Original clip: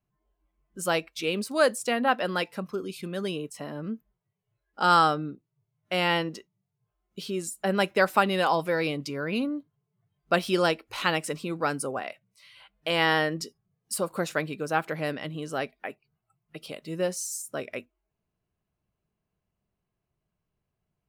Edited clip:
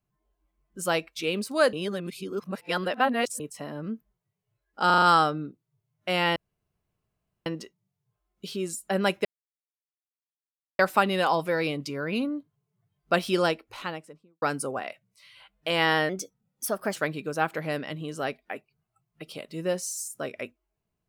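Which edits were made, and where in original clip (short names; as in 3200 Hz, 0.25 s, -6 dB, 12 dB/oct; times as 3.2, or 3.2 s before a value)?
1.73–3.4 reverse
4.86 stutter 0.04 s, 5 plays
6.2 insert room tone 1.10 s
7.99 insert silence 1.54 s
10.53–11.62 studio fade out
13.29–14.3 speed 116%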